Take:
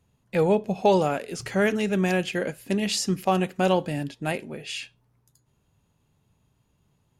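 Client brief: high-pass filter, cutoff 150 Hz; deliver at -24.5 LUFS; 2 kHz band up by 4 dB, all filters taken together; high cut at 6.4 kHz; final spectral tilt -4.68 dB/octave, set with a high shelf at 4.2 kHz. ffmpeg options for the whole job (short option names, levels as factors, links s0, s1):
-af "highpass=150,lowpass=6400,equalizer=f=2000:t=o:g=4.5,highshelf=f=4200:g=3.5,volume=1.06"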